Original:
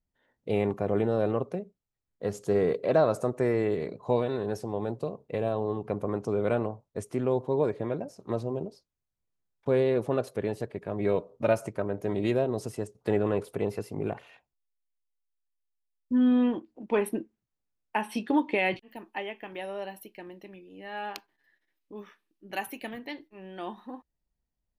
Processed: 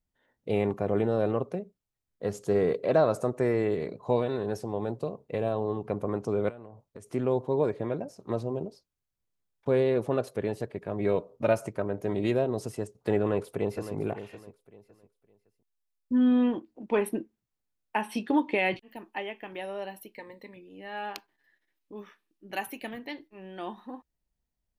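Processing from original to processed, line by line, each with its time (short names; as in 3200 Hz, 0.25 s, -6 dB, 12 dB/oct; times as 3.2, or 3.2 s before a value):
6.49–7.1 compressor 12:1, threshold -40 dBFS
13.2–13.94 echo throw 0.56 s, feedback 25%, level -12 dB
20.15–20.57 ripple EQ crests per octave 0.98, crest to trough 14 dB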